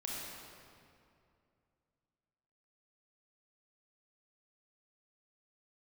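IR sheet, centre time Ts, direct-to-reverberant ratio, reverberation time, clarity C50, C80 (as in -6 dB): 145 ms, -4.5 dB, 2.5 s, -2.5 dB, -1.0 dB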